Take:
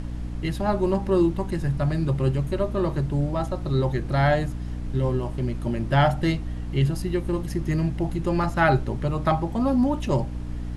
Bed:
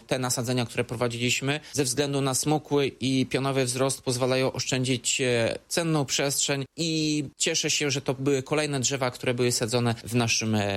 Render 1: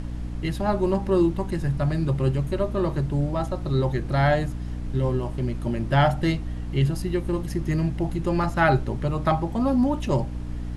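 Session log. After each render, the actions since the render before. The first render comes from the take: nothing audible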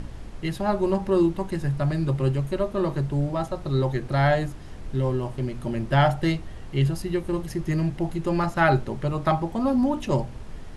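de-hum 60 Hz, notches 5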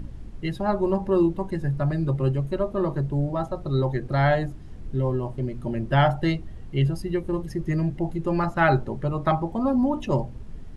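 denoiser 10 dB, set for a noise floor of -39 dBFS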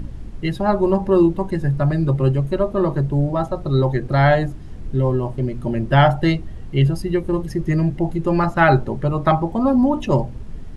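gain +6 dB; limiter -2 dBFS, peak gain reduction 1.5 dB

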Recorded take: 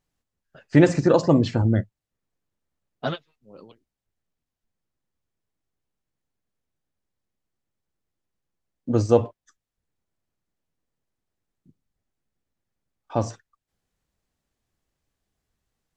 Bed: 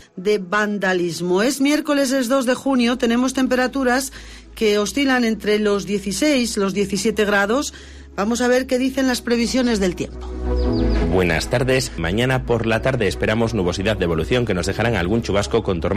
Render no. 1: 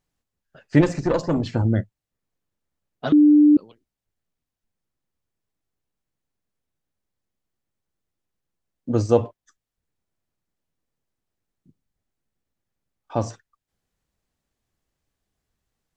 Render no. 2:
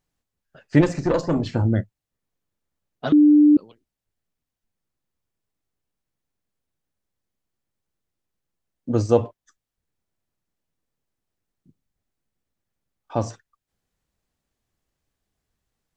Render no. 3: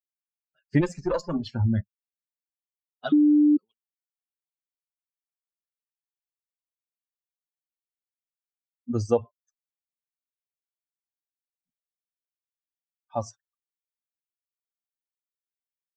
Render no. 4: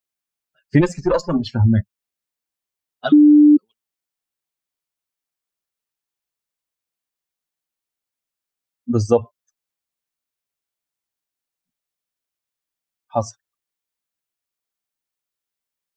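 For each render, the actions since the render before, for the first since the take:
0.81–1.54 tube stage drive 11 dB, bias 0.65; 3.12–3.57 bleep 297 Hz -9.5 dBFS
0.95–1.72 doubler 30 ms -13.5 dB
per-bin expansion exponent 2; compressor, threshold -16 dBFS, peak gain reduction 5.5 dB
gain +8.5 dB; limiter -2 dBFS, peak gain reduction 2.5 dB

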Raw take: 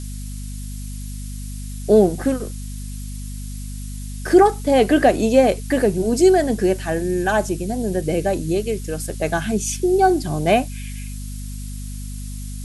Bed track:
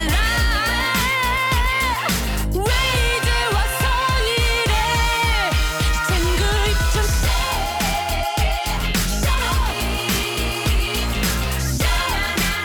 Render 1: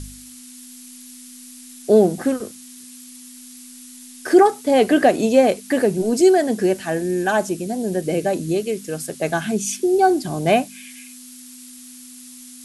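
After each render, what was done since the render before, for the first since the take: de-hum 50 Hz, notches 4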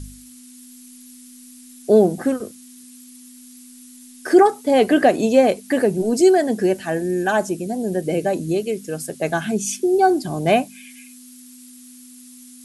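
denoiser 6 dB, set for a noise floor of -41 dBFS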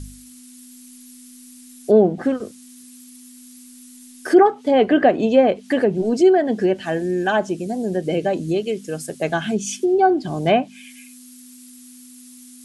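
treble ducked by the level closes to 2200 Hz, closed at -12 dBFS; dynamic EQ 3100 Hz, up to +7 dB, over -54 dBFS, Q 7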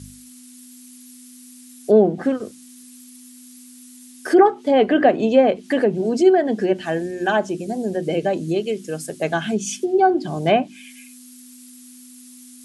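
HPF 81 Hz; notches 60/120/180/240/300/360 Hz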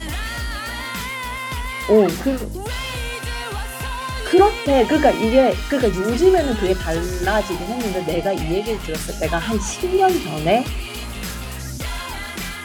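add bed track -8.5 dB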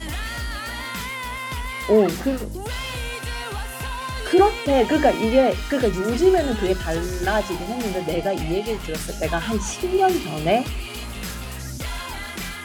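gain -2.5 dB

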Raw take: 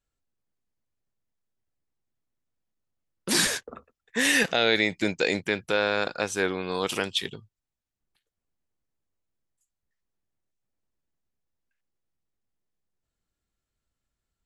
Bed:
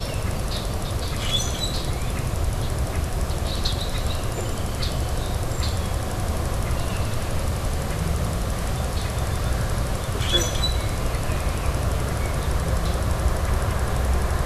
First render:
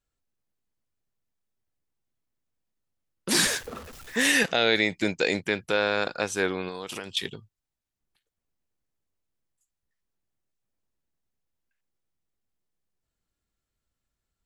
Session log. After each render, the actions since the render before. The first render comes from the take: 3.32–4.32 zero-crossing step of -38 dBFS; 6.68–7.17 compressor, threshold -31 dBFS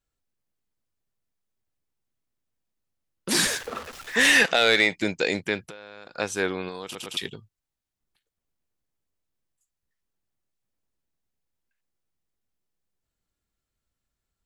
3.6–4.96 overdrive pedal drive 13 dB, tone 4600 Hz, clips at -7 dBFS; 5.6–6.17 compressor 10:1, threshold -38 dBFS; 6.84 stutter in place 0.11 s, 3 plays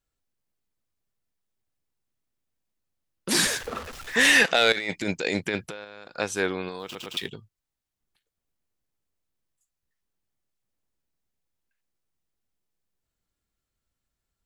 3.56–4.17 low shelf 120 Hz +10 dB; 4.72–5.85 negative-ratio compressor -28 dBFS; 6.79–7.29 median filter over 5 samples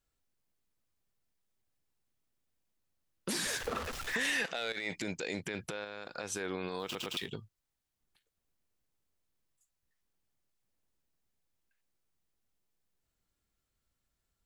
compressor 4:1, threshold -29 dBFS, peak gain reduction 12 dB; limiter -25 dBFS, peak gain reduction 11 dB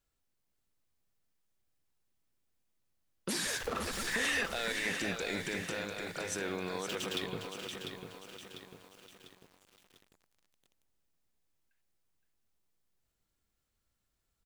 echo 0.517 s -7.5 dB; lo-fi delay 0.697 s, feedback 55%, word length 9-bit, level -7 dB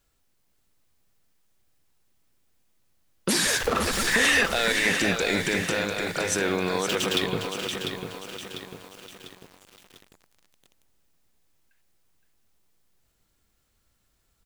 gain +11.5 dB

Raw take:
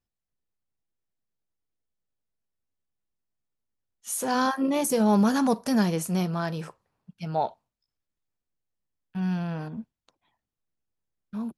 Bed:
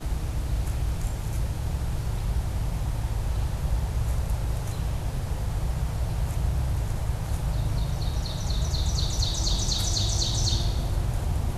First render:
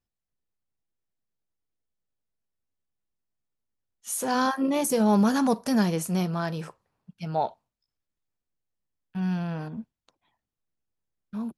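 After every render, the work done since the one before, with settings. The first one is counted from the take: nothing audible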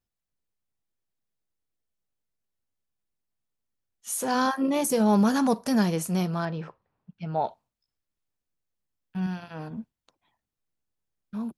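6.45–7.44 air absorption 240 m; 9.26–9.71 notch comb 170 Hz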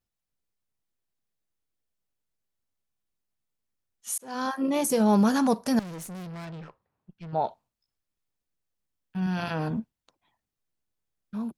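4.18–4.92 fade in equal-power; 5.79–7.33 tube stage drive 37 dB, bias 0.55; 9.22–9.8 fast leveller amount 70%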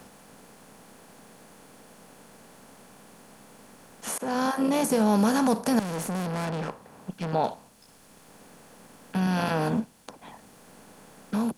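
per-bin compression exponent 0.6; three-band squash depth 40%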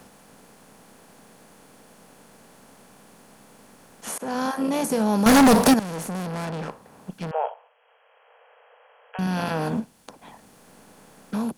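5.26–5.74 sample leveller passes 5; 7.31–9.19 brick-wall FIR band-pass 430–3300 Hz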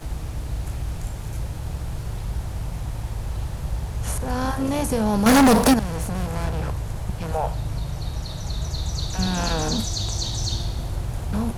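add bed -1 dB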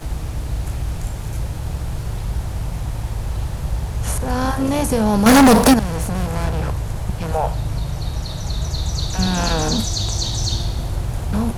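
gain +4.5 dB

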